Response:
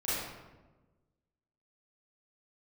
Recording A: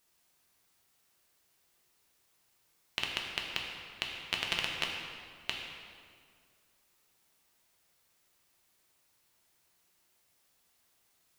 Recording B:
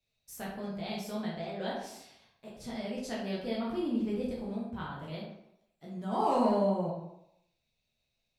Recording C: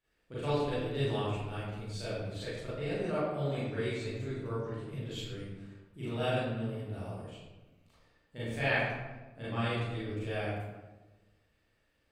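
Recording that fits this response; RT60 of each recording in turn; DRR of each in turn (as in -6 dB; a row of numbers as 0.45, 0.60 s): C; 2.1, 0.80, 1.2 s; -1.0, -6.0, -12.5 dB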